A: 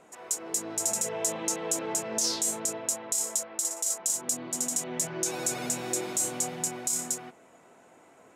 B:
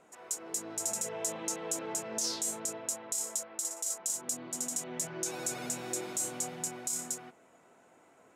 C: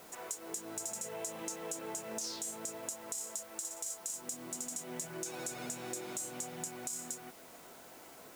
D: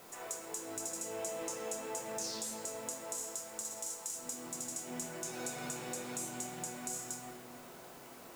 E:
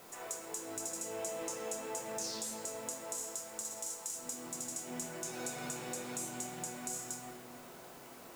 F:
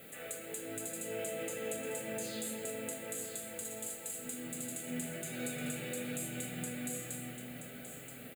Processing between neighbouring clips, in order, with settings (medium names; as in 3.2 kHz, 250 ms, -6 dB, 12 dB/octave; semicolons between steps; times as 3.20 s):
peaking EQ 1.4 kHz +2.5 dB 0.24 oct; trim -5.5 dB
compression 3:1, threshold -48 dBFS, peak gain reduction 14 dB; added noise white -64 dBFS; trim +6 dB
reverberation RT60 2.3 s, pre-delay 7 ms, DRR 0 dB; trim -1.5 dB
no audible change
static phaser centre 2.4 kHz, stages 4; comb of notches 360 Hz; on a send: delay 977 ms -9.5 dB; on the sum: trim +6.5 dB